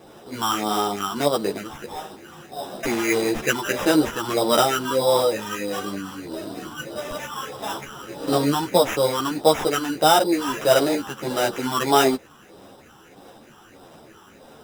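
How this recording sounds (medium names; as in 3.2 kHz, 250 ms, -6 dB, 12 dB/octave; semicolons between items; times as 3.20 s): phasing stages 6, 1.6 Hz, lowest notch 540–3300 Hz; aliases and images of a low sample rate 4.4 kHz, jitter 0%; a shimmering, thickened sound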